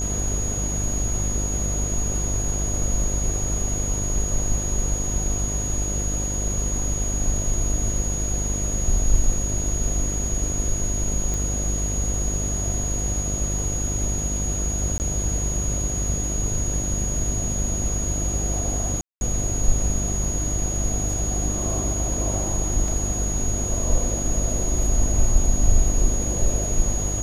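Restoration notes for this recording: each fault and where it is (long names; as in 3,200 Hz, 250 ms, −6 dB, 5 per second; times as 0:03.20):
mains buzz 50 Hz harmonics 15 −27 dBFS
whistle 6,700 Hz −27 dBFS
0:11.34: click
0:14.98–0:15.00: drop-out 19 ms
0:19.01–0:19.21: drop-out 201 ms
0:22.88: drop-out 2.5 ms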